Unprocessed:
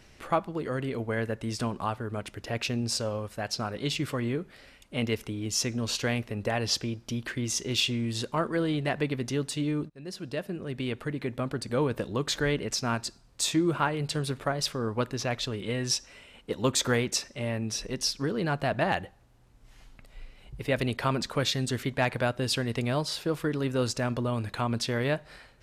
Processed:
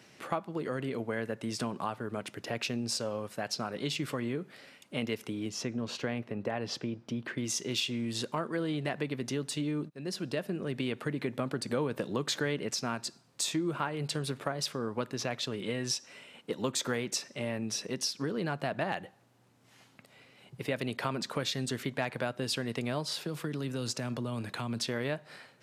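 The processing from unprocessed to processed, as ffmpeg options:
ffmpeg -i in.wav -filter_complex "[0:a]asettb=1/sr,asplit=3[link_01][link_02][link_03];[link_01]atrim=end=5.494[link_04];[link_02]atrim=start=5.49:end=7.38,asetpts=PTS-STARTPTS,afade=type=in:duration=0.004:curve=qsin,afade=type=out:start_time=1.886:duration=0.004:curve=qsin,lowpass=frequency=1700:poles=1[link_05];[link_03]atrim=start=7.376[link_06];[link_04][link_05]acrossfade=duration=0.004:curve1=hsin:curve2=qsin[link_07];[link_07][link_06]acrossfade=duration=0.004:curve1=qsin:curve2=hsin,asettb=1/sr,asplit=3[link_08][link_09][link_10];[link_08]atrim=end=23.134[link_11];[link_09]atrim=start=23.13:end=24.87,asetpts=PTS-STARTPTS,afade=type=in:duration=0.004:curve=qsin,afade=type=out:start_time=1.736:duration=0.004:curve=qsin,acrossover=split=210|3000[link_12][link_13][link_14];[link_13]acompressor=threshold=-34dB:ratio=6:attack=3.2:release=140:knee=2.83:detection=peak[link_15];[link_12][link_15][link_14]amix=inputs=3:normalize=0[link_16];[link_10]atrim=start=24.866[link_17];[link_11][link_16]acrossfade=duration=0.004:curve1=hsin:curve2=qsin[link_18];[link_18][link_17]acrossfade=duration=0.004:curve1=qsin:curve2=hsin,asplit=3[link_19][link_20][link_21];[link_19]atrim=end=9.922[link_22];[link_20]atrim=start=9.918:end=12.712,asetpts=PTS-STARTPTS,volume=3.5dB[link_23];[link_21]atrim=start=12.708[link_24];[link_22][link_23]acrossfade=duration=0.004:curve1=hsin:curve2=hsin[link_25];[link_25][link_24]acrossfade=duration=0.004:curve1=hsin:curve2=hsin,highpass=frequency=130:width=0.5412,highpass=frequency=130:width=1.3066,acompressor=threshold=-31dB:ratio=2.5" out.wav

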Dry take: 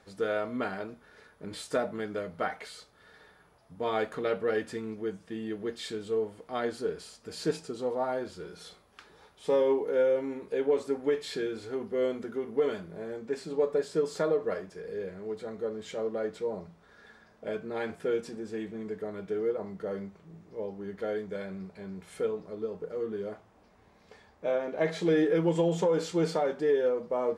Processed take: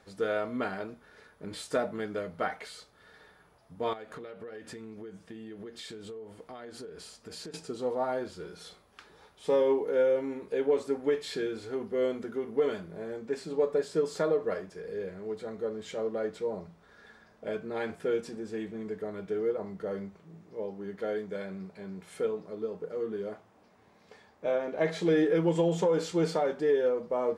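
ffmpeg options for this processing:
ffmpeg -i in.wav -filter_complex "[0:a]asettb=1/sr,asplit=3[link_01][link_02][link_03];[link_01]atrim=end=3.934[link_04];[link_02]atrim=start=3.93:end=7.54,asetpts=PTS-STARTPTS,afade=type=in:duration=0.004:curve=qsin,afade=type=out:start_time=3.606:duration=0.004:curve=qsin,acompressor=threshold=-39dB:ratio=20:attack=3.2:release=140:knee=1:detection=peak[link_05];[link_03]atrim=start=7.536[link_06];[link_04][link_05]acrossfade=duration=0.004:curve1=hsin:curve2=qsin[link_07];[link_07][link_06]acrossfade=duration=0.004:curve1=qsin:curve2=hsin,asettb=1/sr,asplit=3[link_08][link_09][link_10];[link_08]atrim=end=20.184[link_11];[link_09]atrim=start=20.18:end=24.45,asetpts=PTS-STARTPTS,afade=type=in:duration=0.004:curve=qsin,afade=type=out:start_time=4.266:duration=0.004:curve=qsin,highpass=110[link_12];[link_10]atrim=start=24.446[link_13];[link_11][link_12]acrossfade=duration=0.004:curve1=hsin:curve2=qsin[link_14];[link_14][link_13]acrossfade=duration=0.004:curve1=qsin:curve2=hsin" out.wav

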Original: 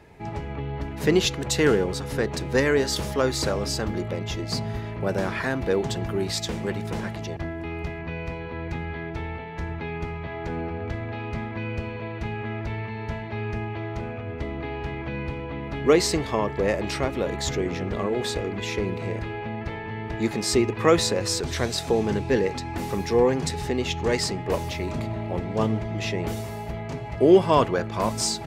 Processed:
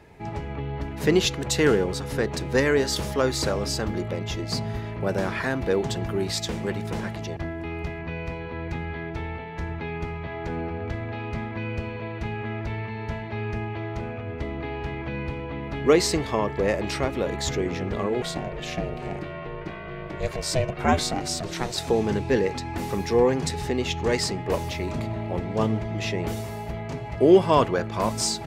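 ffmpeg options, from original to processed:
ffmpeg -i in.wav -filter_complex "[0:a]asettb=1/sr,asplit=3[link_01][link_02][link_03];[link_01]atrim=end=18.224[link_04];[link_02]atrim=start=18.22:end=21.77,asetpts=PTS-STARTPTS,afade=type=in:duration=0.004:curve=qsin,afade=type=out:start_time=3.546:duration=0.004:curve=qsin,aeval=exprs='val(0)*sin(2*PI*250*n/s)':channel_layout=same[link_05];[link_03]atrim=start=21.766[link_06];[link_04][link_05]acrossfade=duration=0.004:curve1=hsin:curve2=qsin[link_07];[link_07][link_06]acrossfade=duration=0.004:curve1=qsin:curve2=hsin" out.wav

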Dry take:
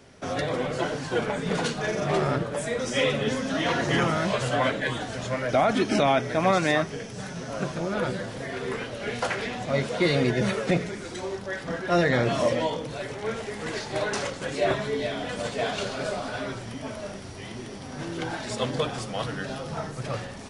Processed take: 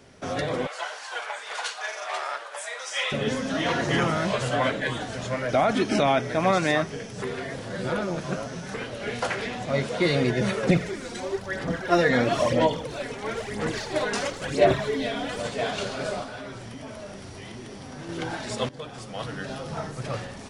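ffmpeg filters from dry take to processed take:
ffmpeg -i in.wav -filter_complex "[0:a]asettb=1/sr,asplit=3[link_01][link_02][link_03];[link_01]atrim=end=0.674[link_04];[link_02]atrim=start=0.67:end=3.12,asetpts=PTS-STARTPTS,afade=type=in:duration=0.004:curve=qsin,afade=type=out:start_time=2.446:duration=0.004:curve=qsin,highpass=frequency=750:width=0.5412,highpass=frequency=750:width=1.3066[link_05];[link_03]atrim=start=3.116[link_06];[link_04][link_05]acrossfade=duration=0.004:curve1=hsin:curve2=qsin[link_07];[link_07][link_06]acrossfade=duration=0.004:curve1=qsin:curve2=hsin,asettb=1/sr,asplit=3[link_08][link_09][link_10];[link_08]atrim=end=10.634[link_11];[link_09]atrim=start=10.63:end=15.4,asetpts=PTS-STARTPTS,afade=type=in:duration=0.004:curve=qsin,afade=type=out:start_time=4.766:duration=0.004:curve=qsin,aphaser=in_gain=1:out_gain=1:delay=4.3:decay=0.54:speed=1:type=sinusoidal[link_12];[link_10]atrim=start=15.396[link_13];[link_11][link_12]acrossfade=duration=0.004:curve1=hsin:curve2=qsin[link_14];[link_14][link_13]acrossfade=duration=0.004:curve1=qsin:curve2=hsin,asettb=1/sr,asplit=3[link_15][link_16][link_17];[link_15]atrim=end=16.234[link_18];[link_16]atrim=start=16.23:end=18.09,asetpts=PTS-STARTPTS,afade=type=in:duration=0.004:curve=qsin,afade=type=out:start_time=1.856:duration=0.004:curve=qsin,acompressor=threshold=-36dB:ratio=2.5:attack=3.2:release=140:knee=1:detection=peak[link_19];[link_17]atrim=start=18.086[link_20];[link_18][link_19]acrossfade=duration=0.004:curve1=hsin:curve2=qsin[link_21];[link_21][link_20]acrossfade=duration=0.004:curve1=qsin:curve2=hsin,asplit=4[link_22][link_23][link_24][link_25];[link_22]atrim=end=7.222[link_26];[link_23]atrim=start=7.218:end=8.742,asetpts=PTS-STARTPTS,areverse[link_27];[link_24]atrim=start=8.738:end=18.69,asetpts=PTS-STARTPTS,afade=type=out:start_time=9.948:duration=0.004:curve=hsin:silence=0.141254[link_28];[link_25]atrim=start=18.69,asetpts=PTS-STARTPTS,afade=type=in:duration=1.18:curve=qsin:silence=0.141254[link_29];[link_26][link_27]acrossfade=duration=0.004:curve1=hsin:curve2=hsin[link_30];[link_28][link_29]concat=n=2:v=0:a=1[link_31];[link_30][link_31]acrossfade=duration=0.004:curve1=hsin:curve2=hsin" out.wav

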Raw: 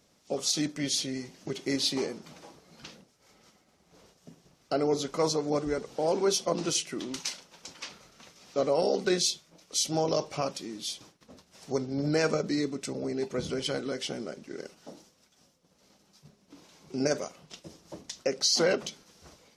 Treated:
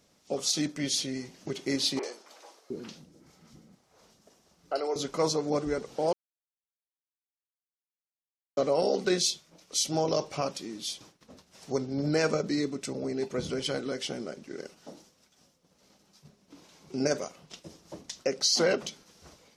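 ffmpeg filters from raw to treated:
ffmpeg -i in.wav -filter_complex "[0:a]asettb=1/sr,asplit=3[link_01][link_02][link_03];[link_01]atrim=end=1.994[link_04];[link_02]atrim=start=1.99:end=4.96,asetpts=PTS-STARTPTS,afade=type=in:duration=0.004:curve=qsin,afade=type=out:start_time=2.966:duration=0.004:curve=qsin,acrossover=split=390|2500[link_05][link_06][link_07];[link_07]adelay=40[link_08];[link_05]adelay=710[link_09];[link_09][link_06][link_08]amix=inputs=3:normalize=0,atrim=end_sample=130977[link_10];[link_03]atrim=start=4.956[link_11];[link_04][link_10]acrossfade=duration=0.004:curve1=hsin:curve2=qsin[link_12];[link_12][link_11]acrossfade=duration=0.004:curve1=qsin:curve2=hsin,asplit=3[link_13][link_14][link_15];[link_13]atrim=end=6.13,asetpts=PTS-STARTPTS,afade=type=out:start_time=6.126:duration=0.004:curve=hsin[link_16];[link_14]atrim=start=6.13:end=8.57,asetpts=PTS-STARTPTS,volume=0[link_17];[link_15]atrim=start=8.57,asetpts=PTS-STARTPTS,afade=type=in:duration=0.004:curve=hsin[link_18];[link_16][link_17][link_18]concat=n=3:v=0:a=1" out.wav

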